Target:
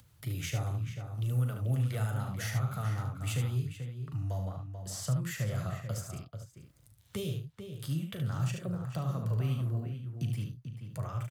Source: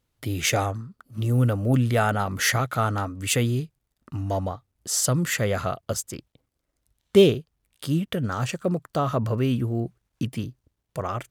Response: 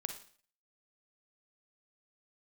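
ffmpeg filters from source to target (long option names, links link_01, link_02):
-filter_complex "[0:a]flanger=delay=1.1:depth=9.6:regen=-49:speed=0.78:shape=triangular,aecho=1:1:38|73:0.355|0.473,acrossover=split=160|380|4400[link_01][link_02][link_03][link_04];[link_01]acompressor=threshold=-38dB:ratio=4[link_05];[link_02]acompressor=threshold=-33dB:ratio=4[link_06];[link_03]acompressor=threshold=-34dB:ratio=4[link_07];[link_04]acompressor=threshold=-40dB:ratio=4[link_08];[link_05][link_06][link_07][link_08]amix=inputs=4:normalize=0,firequalizer=gain_entry='entry(120,0);entry(230,-26);entry(570,-14);entry(1200,-8);entry(14000,-2)':delay=0.05:min_phase=1,acompressor=mode=upward:threshold=-46dB:ratio=2.5,highpass=78,equalizer=frequency=250:width_type=o:width=1.8:gain=13.5,asplit=2[link_09][link_10];[link_10]adelay=437.3,volume=-8dB,highshelf=frequency=4000:gain=-9.84[link_11];[link_09][link_11]amix=inputs=2:normalize=0"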